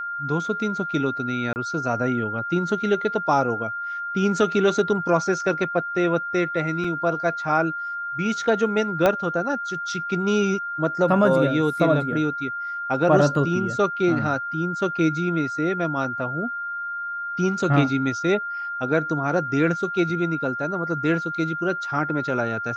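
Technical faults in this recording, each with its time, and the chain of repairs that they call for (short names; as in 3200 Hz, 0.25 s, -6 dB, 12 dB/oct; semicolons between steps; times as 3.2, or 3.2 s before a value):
tone 1400 Hz -27 dBFS
1.53–1.56 gap 29 ms
6.84 gap 3.9 ms
9.06 pop -7 dBFS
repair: de-click; notch 1400 Hz, Q 30; interpolate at 1.53, 29 ms; interpolate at 6.84, 3.9 ms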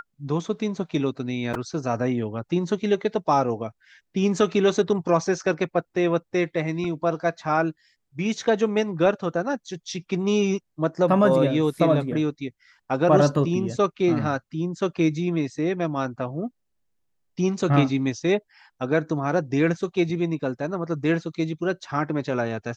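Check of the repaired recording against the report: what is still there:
9.06 pop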